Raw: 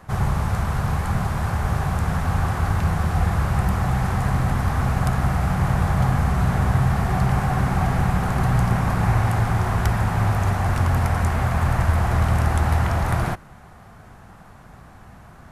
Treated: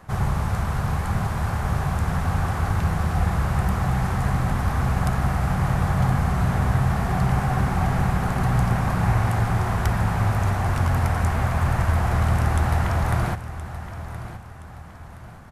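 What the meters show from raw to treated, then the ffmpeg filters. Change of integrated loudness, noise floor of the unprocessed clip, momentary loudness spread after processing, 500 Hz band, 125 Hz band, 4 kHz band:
-1.5 dB, -45 dBFS, 13 LU, -1.0 dB, -1.5 dB, -1.5 dB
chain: -af "aecho=1:1:1021|2042|3063|4084:0.224|0.0851|0.0323|0.0123,volume=0.841"

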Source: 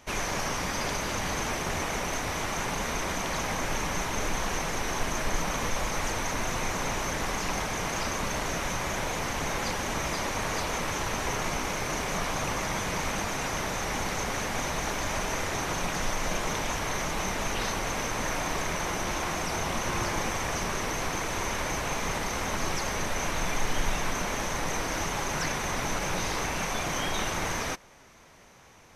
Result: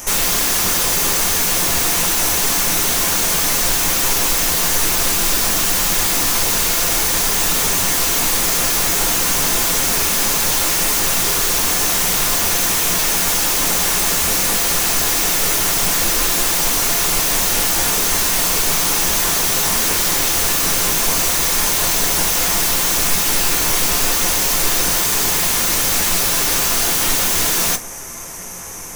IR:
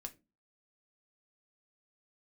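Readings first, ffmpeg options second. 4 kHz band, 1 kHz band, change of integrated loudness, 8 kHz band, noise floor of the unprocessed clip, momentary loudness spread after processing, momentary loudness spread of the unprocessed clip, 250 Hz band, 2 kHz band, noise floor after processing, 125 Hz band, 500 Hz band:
+16.5 dB, +7.0 dB, +16.0 dB, +18.5 dB, -32 dBFS, 0 LU, 1 LU, +7.5 dB, +9.5 dB, -17 dBFS, +5.5 dB, +7.0 dB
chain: -filter_complex "[0:a]aexciter=amount=5.6:drive=7.2:freq=5900,aeval=exprs='0.335*sin(PI/2*7.94*val(0)/0.335)':c=same[s0];[1:a]atrim=start_sample=2205[s1];[s0][s1]afir=irnorm=-1:irlink=0"

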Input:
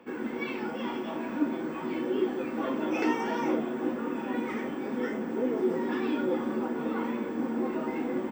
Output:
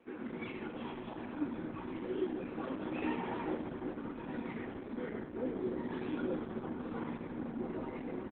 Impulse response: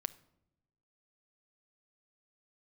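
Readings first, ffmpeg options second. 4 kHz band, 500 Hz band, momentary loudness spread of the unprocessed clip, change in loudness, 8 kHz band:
-9.5 dB, -9.5 dB, 5 LU, -9.0 dB, no reading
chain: -filter_complex "[0:a]asplit=6[s0][s1][s2][s3][s4][s5];[s1]adelay=107,afreqshift=-64,volume=0.398[s6];[s2]adelay=214,afreqshift=-128,volume=0.184[s7];[s3]adelay=321,afreqshift=-192,volume=0.0841[s8];[s4]adelay=428,afreqshift=-256,volume=0.0389[s9];[s5]adelay=535,afreqshift=-320,volume=0.0178[s10];[s0][s6][s7][s8][s9][s10]amix=inputs=6:normalize=0,volume=0.398" -ar 48000 -c:a libopus -b:a 8k

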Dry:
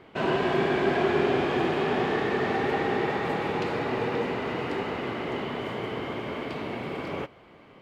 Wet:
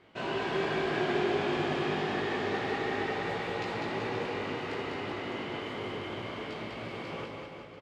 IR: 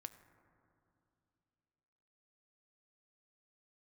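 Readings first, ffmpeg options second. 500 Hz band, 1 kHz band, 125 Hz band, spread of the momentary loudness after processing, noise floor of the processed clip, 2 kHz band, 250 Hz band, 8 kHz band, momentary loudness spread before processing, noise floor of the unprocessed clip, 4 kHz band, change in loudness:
-6.0 dB, -5.5 dB, -5.5 dB, 9 LU, -45 dBFS, -3.5 dB, -6.0 dB, no reading, 9 LU, -52 dBFS, -1.5 dB, -5.5 dB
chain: -filter_complex "[0:a]lowpass=5900,aemphasis=mode=production:type=75kf,flanger=delay=17.5:depth=2.6:speed=0.29,aecho=1:1:200|380|542|687.8|819:0.631|0.398|0.251|0.158|0.1[s0];[1:a]atrim=start_sample=2205[s1];[s0][s1]afir=irnorm=-1:irlink=0"

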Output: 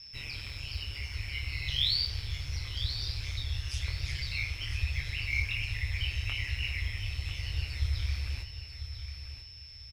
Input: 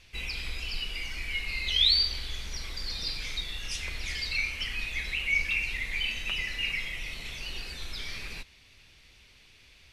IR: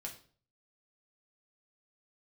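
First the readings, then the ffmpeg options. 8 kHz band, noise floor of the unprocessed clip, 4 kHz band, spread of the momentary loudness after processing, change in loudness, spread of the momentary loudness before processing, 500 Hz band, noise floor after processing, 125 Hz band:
-5.5 dB, -57 dBFS, -5.0 dB, 11 LU, -4.0 dB, 13 LU, -6.0 dB, -48 dBFS, +10.5 dB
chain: -af "acrusher=bits=8:mode=log:mix=0:aa=0.000001,flanger=delay=18:depth=5.9:speed=1.2,aeval=exprs='val(0)+0.00708*sin(2*PI*5300*n/s)':c=same,asubboost=boost=4.5:cutoff=54,aeval=exprs='val(0)*sin(2*PI*70*n/s)':c=same,aecho=1:1:994|1988|2982:0.316|0.0854|0.0231"

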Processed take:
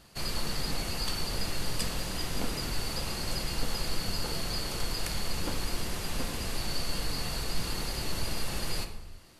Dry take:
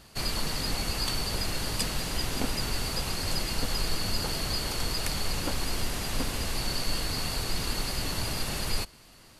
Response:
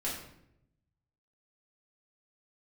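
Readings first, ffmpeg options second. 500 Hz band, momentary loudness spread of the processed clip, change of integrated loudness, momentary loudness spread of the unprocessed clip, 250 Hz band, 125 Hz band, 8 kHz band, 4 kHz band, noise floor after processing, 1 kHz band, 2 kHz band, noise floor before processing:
-2.0 dB, 2 LU, -3.0 dB, 2 LU, -2.5 dB, -2.5 dB, -3.5 dB, -3.5 dB, -43 dBFS, -3.0 dB, -3.0 dB, -54 dBFS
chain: -filter_complex "[0:a]asplit=2[s0][s1];[s1]equalizer=f=530:t=o:w=0.77:g=3[s2];[1:a]atrim=start_sample=2205,afade=t=out:st=0.31:d=0.01,atrim=end_sample=14112,asetrate=29106,aresample=44100[s3];[s2][s3]afir=irnorm=-1:irlink=0,volume=0.299[s4];[s0][s4]amix=inputs=2:normalize=0,volume=0.501"

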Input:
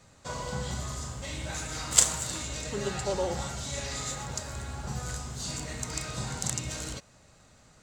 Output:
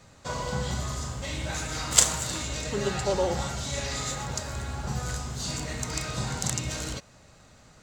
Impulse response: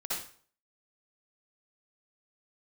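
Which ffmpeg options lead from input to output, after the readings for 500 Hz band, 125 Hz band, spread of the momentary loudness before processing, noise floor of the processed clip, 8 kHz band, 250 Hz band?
+4.0 dB, +4.0 dB, 12 LU, -55 dBFS, +1.5 dB, +4.0 dB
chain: -af "equalizer=f=8600:w=1.6:g=-4,volume=1.58"

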